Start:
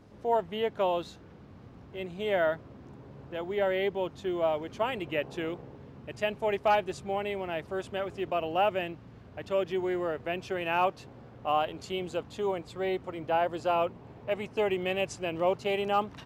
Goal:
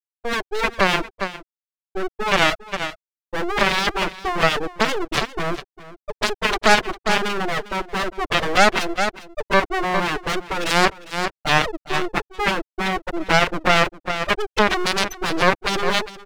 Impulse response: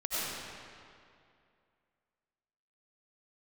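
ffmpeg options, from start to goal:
-filter_complex "[0:a]highpass=f=320:w=0.5412,highpass=f=320:w=1.3066,agate=range=-8dB:threshold=-43dB:ratio=16:detection=peak,afftfilt=real='re*gte(hypot(re,im),0.0708)':imag='im*gte(hypot(re,im),0.0708)':win_size=1024:overlap=0.75,dynaudnorm=f=100:g=9:m=15.5dB,aeval=exprs='max(val(0),0)':c=same,aeval=exprs='0.794*(cos(1*acos(clip(val(0)/0.794,-1,1)))-cos(1*PI/2))+0.158*(cos(8*acos(clip(val(0)/0.794,-1,1)))-cos(8*PI/2))':c=same,asplit=2[a][b];[b]aecho=0:1:403:0.141[c];[a][c]amix=inputs=2:normalize=0,alimiter=level_in=14dB:limit=-1dB:release=50:level=0:latency=1,volume=-1dB"

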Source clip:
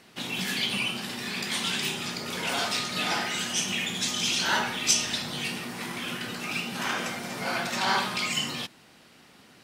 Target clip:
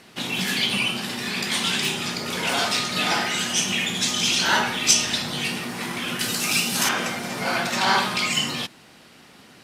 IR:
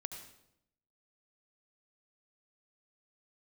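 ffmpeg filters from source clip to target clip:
-filter_complex "[0:a]asettb=1/sr,asplit=3[a][b][c];[a]atrim=end=6.194[d];[b]atrim=start=6.19:end=6.89,asetpts=PTS-STARTPTS,afade=t=in:d=0.004:c=qsin,afade=t=out:st=0.696:d=0.004:c=qsin,bass=f=250:g=1,treble=f=4k:g=14[e];[c]atrim=start=6.886[f];[d][e]acrossfade=d=0.004:c1=hsin:c2=qsin[g];[g][f]acrossfade=d=0.004:c1=qsin:c2=hsin,volume=5.5dB" -ar 32000 -c:a libvorbis -b:a 128k

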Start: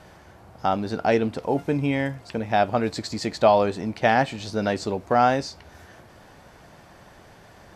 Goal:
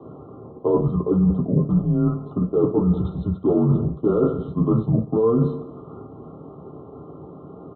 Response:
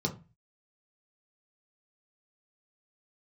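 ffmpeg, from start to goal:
-filter_complex "[0:a]asplit=2[a][b];[b]aeval=exprs='(mod(3.76*val(0)+1,2)-1)/3.76':c=same,volume=-6.5dB[c];[a][c]amix=inputs=2:normalize=0,asetrate=40440,aresample=44100,atempo=1.09051,highpass=f=240:t=q:w=0.5412,highpass=f=240:t=q:w=1.307,lowpass=f=2.3k:t=q:w=0.5176,lowpass=f=2.3k:t=q:w=0.7071,lowpass=f=2.3k:t=q:w=1.932,afreqshift=-230,aecho=1:1:97|194|291|388:0.15|0.0703|0.0331|0.0155[d];[1:a]atrim=start_sample=2205,atrim=end_sample=3528[e];[d][e]afir=irnorm=-1:irlink=0,areverse,acompressor=threshold=-12dB:ratio=12,areverse,afftfilt=real='re*eq(mod(floor(b*sr/1024/1400),2),0)':imag='im*eq(mod(floor(b*sr/1024/1400),2),0)':win_size=1024:overlap=0.75,volume=-3dB"

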